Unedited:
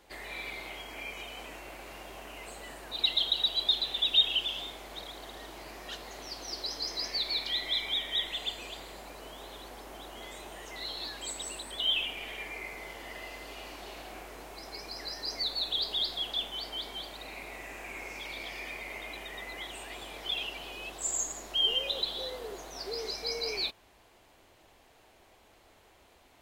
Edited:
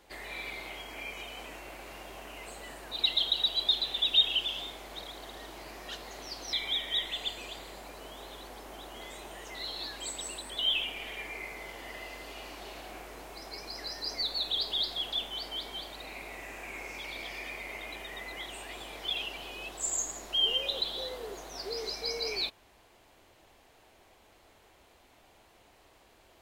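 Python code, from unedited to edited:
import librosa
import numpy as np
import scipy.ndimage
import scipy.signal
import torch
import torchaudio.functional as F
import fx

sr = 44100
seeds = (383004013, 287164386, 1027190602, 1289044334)

y = fx.edit(x, sr, fx.cut(start_s=6.53, length_s=1.21), tone=tone)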